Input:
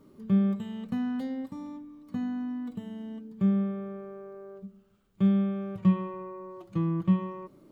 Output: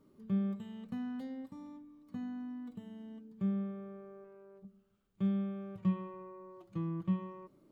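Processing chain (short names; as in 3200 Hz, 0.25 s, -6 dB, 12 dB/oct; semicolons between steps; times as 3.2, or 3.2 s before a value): 4.24–4.65 tube stage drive 40 dB, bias 0.4; gain -9 dB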